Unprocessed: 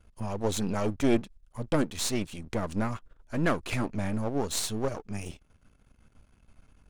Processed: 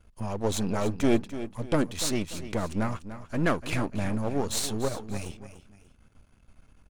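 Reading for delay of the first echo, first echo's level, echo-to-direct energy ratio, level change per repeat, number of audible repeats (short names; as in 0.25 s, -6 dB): 0.293 s, -12.5 dB, -12.0 dB, -8.5 dB, 2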